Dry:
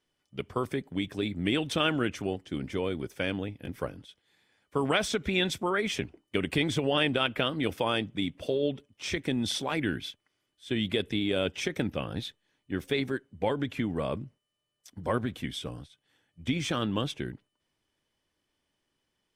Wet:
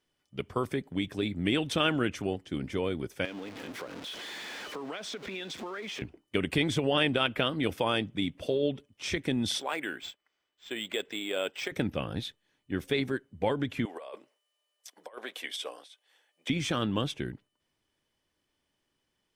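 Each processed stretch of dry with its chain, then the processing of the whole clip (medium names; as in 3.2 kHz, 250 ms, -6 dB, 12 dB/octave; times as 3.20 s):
3.25–6.02 s: jump at every zero crossing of -34 dBFS + three-band isolator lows -21 dB, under 210 Hz, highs -13 dB, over 6.4 kHz + compression 5:1, threshold -36 dBFS
9.60–11.72 s: high-pass 490 Hz + decimation joined by straight lines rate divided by 4×
13.85–16.50 s: high-pass 480 Hz 24 dB/octave + peaking EQ 1.4 kHz -3.5 dB 0.35 oct + compressor with a negative ratio -38 dBFS, ratio -0.5
whole clip: none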